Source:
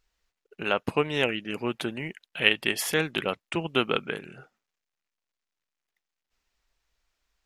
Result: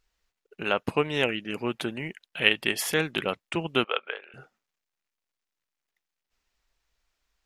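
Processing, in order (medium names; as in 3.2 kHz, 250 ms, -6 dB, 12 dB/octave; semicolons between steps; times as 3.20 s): 3.84–4.34 s: Chebyshev band-pass 510–3400 Hz, order 3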